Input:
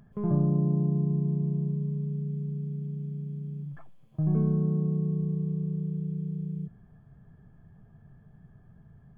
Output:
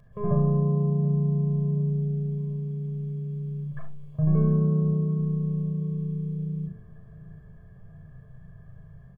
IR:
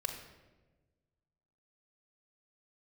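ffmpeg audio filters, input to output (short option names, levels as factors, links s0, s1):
-filter_complex "[0:a]dynaudnorm=f=100:g=3:m=1.58,asplit=2[s0][s1];[s1]adelay=732,lowpass=f=1100:p=1,volume=0.126,asplit=2[s2][s3];[s3]adelay=732,lowpass=f=1100:p=1,volume=0.54,asplit=2[s4][s5];[s5]adelay=732,lowpass=f=1100:p=1,volume=0.54,asplit=2[s6][s7];[s7]adelay=732,lowpass=f=1100:p=1,volume=0.54,asplit=2[s8][s9];[s9]adelay=732,lowpass=f=1100:p=1,volume=0.54[s10];[s0][s2][s4][s6][s8][s10]amix=inputs=6:normalize=0[s11];[1:a]atrim=start_sample=2205,atrim=end_sample=3528[s12];[s11][s12]afir=irnorm=-1:irlink=0"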